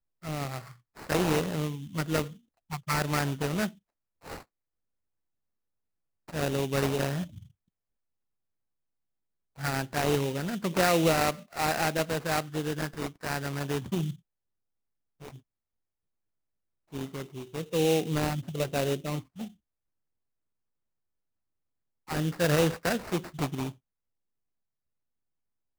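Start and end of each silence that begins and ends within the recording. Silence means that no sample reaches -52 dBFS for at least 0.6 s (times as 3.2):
4.43–6.28
7.51–9.57
14.19–15.21
15.39–16.92
19.53–22.08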